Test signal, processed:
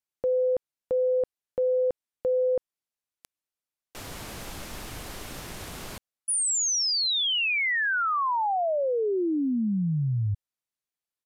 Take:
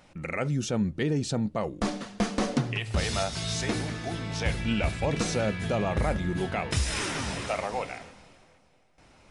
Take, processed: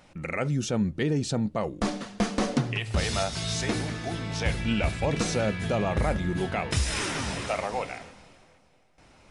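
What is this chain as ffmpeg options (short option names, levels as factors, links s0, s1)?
-af "aresample=32000,aresample=44100,volume=1.12"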